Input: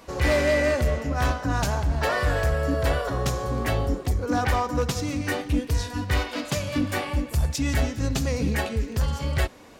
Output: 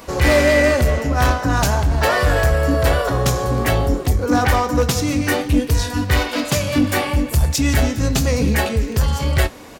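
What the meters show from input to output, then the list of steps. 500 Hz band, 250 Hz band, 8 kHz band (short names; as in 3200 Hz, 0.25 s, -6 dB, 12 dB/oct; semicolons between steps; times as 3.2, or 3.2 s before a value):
+7.5 dB, +8.0 dB, +9.5 dB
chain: in parallel at -7 dB: soft clip -28 dBFS, distortion -8 dB; on the sum: high shelf 11000 Hz +7.5 dB; doubler 24 ms -13 dB; gain +6 dB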